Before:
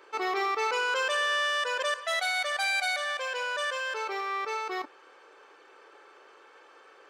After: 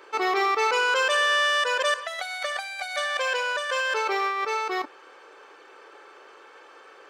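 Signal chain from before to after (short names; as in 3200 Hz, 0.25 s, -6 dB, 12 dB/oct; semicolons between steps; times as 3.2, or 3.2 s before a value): 2.06–4.44 negative-ratio compressor -33 dBFS, ratio -0.5; gain +5.5 dB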